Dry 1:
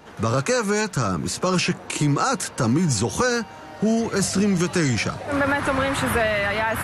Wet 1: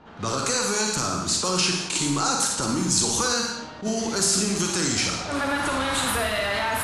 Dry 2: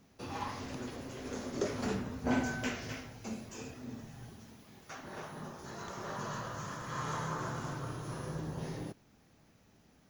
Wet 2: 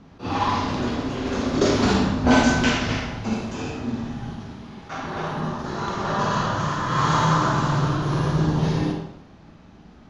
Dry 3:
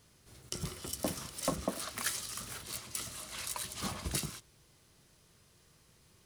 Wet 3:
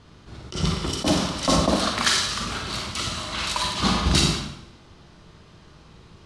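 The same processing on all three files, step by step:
dynamic bell 150 Hz, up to -8 dB, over -37 dBFS, Q 1.2; Schroeder reverb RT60 0.84 s, DRR 1 dB; level-controlled noise filter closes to 1.9 kHz, open at -19 dBFS; in parallel at +2.5 dB: peak limiter -15 dBFS; on the sum: ten-band graphic EQ 125 Hz -4 dB, 500 Hz -6 dB, 2 kHz -6 dB, 4 kHz +5 dB, 8 kHz +5 dB; attacks held to a fixed rise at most 250 dB/s; normalise loudness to -23 LUFS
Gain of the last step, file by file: -7.0 dB, +10.5 dB, +11.0 dB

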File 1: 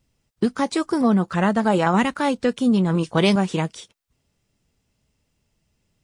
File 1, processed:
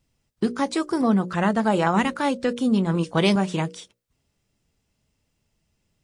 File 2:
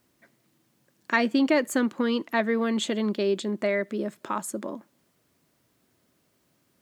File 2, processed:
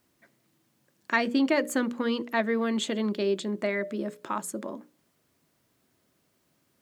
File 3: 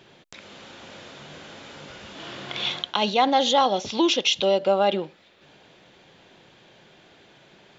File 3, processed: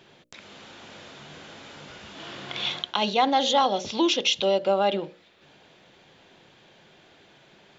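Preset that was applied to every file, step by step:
hum notches 60/120/180/240/300/360/420/480/540/600 Hz; trim -1.5 dB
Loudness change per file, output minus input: -2.0 LU, -2.0 LU, -1.5 LU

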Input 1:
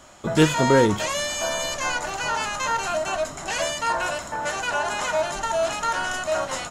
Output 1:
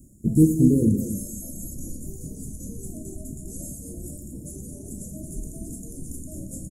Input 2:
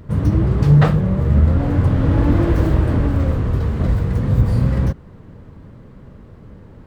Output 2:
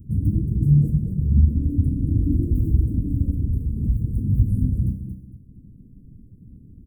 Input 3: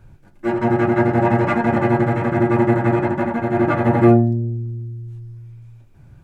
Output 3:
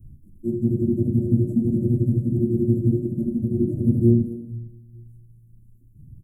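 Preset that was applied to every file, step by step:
inverse Chebyshev band-stop 950–3400 Hz, stop band 70 dB; feedback delay 228 ms, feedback 30%, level -7.5 dB; reverb removal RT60 0.99 s; Schroeder reverb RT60 0.83 s, combs from 28 ms, DRR 6 dB; dynamic bell 160 Hz, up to -3 dB, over -30 dBFS, Q 2.4; peak normalisation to -6 dBFS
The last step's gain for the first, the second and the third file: +7.5 dB, -2.5 dB, +2.0 dB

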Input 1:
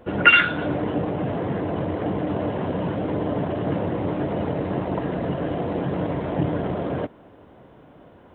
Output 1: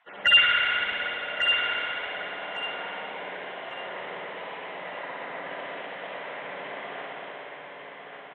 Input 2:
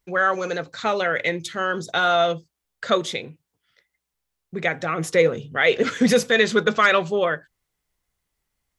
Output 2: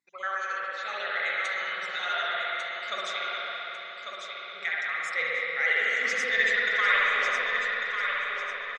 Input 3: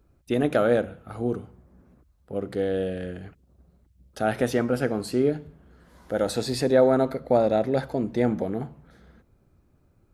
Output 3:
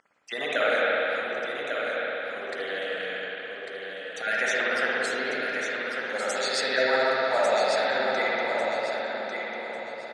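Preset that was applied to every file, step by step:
random holes in the spectrogram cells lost 29%; hum 60 Hz, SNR 28 dB; differentiator; wow and flutter 15 cents; cabinet simulation 100–7600 Hz, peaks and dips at 100 Hz -5 dB, 320 Hz -7 dB, 2 kHz +7 dB, 4.8 kHz -3 dB; overdrive pedal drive 8 dB, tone 2 kHz, clips at -10.5 dBFS; hum notches 60/120/180/240 Hz; feedback delay 1147 ms, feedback 28%, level -6 dB; spring tank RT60 4 s, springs 54/59 ms, chirp 20 ms, DRR -6.5 dB; normalise loudness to -27 LUFS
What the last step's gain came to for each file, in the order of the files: +3.5 dB, -1.0 dB, +13.0 dB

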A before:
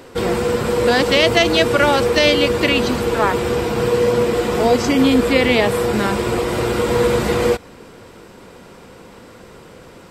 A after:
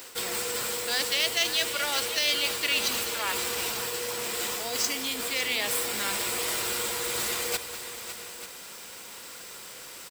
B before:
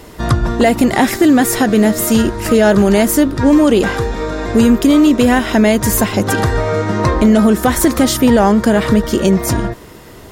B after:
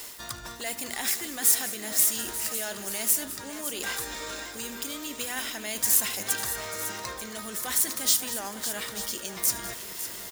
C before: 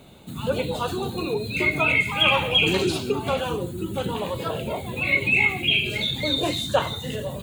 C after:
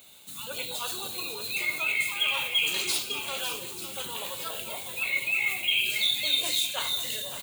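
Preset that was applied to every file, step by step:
median filter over 3 samples; treble shelf 12 kHz +3.5 dB; de-hum 80.97 Hz, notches 5; reverse; compression 10:1, threshold -22 dBFS; reverse; pre-emphasis filter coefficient 0.97; on a send: multi-tap echo 76/204/555/889 ms -17.5/-16.5/-11.5/-14 dB; on the sum: normalise loudness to -27 LUFS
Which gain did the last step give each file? +11.0 dB, +8.5 dB, +8.5 dB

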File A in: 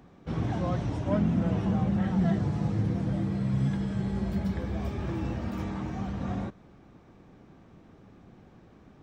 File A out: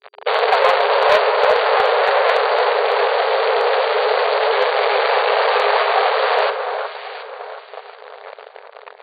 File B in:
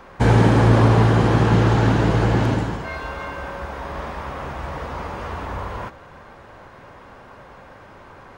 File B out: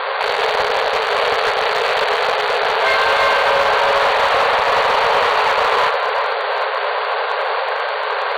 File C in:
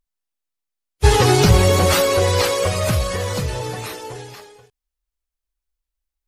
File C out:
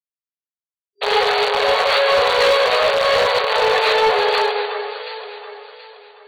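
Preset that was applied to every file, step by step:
fuzz box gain 41 dB, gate -48 dBFS; FFT band-pass 400–4700 Hz; echo whose repeats swap between lows and highs 364 ms, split 1.7 kHz, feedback 56%, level -6 dB; hard clipper -11 dBFS; normalise loudness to -16 LUFS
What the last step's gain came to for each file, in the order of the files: +6.0 dB, +1.0 dB, +0.5 dB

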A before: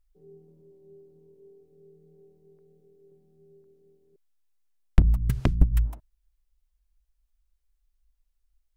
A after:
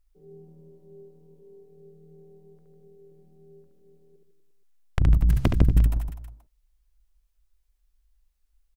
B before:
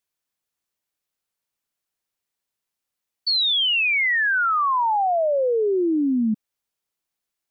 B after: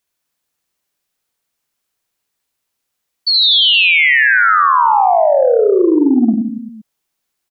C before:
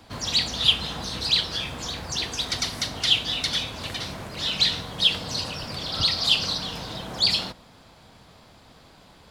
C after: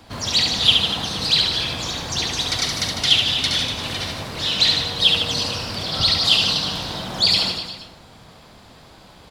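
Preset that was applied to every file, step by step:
reverse bouncing-ball echo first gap 70 ms, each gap 1.15×, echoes 5; transformer saturation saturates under 170 Hz; peak normalisation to -2 dBFS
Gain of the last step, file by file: +2.0 dB, +7.5 dB, +3.5 dB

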